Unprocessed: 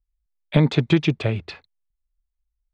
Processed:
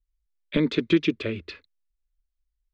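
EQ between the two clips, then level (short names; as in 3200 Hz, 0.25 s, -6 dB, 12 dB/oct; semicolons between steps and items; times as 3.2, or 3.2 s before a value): air absorption 80 m; fixed phaser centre 320 Hz, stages 4; 0.0 dB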